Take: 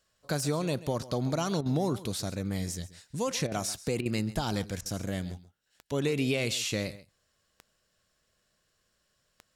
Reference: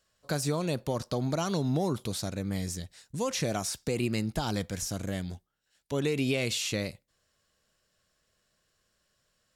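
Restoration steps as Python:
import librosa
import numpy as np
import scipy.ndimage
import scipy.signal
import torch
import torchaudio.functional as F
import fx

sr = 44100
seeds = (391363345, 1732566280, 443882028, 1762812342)

y = fx.fix_declick_ar(x, sr, threshold=10.0)
y = fx.fix_interpolate(y, sr, at_s=(1.61, 3.47, 4.01, 4.81), length_ms=46.0)
y = fx.fix_echo_inverse(y, sr, delay_ms=135, level_db=-17.0)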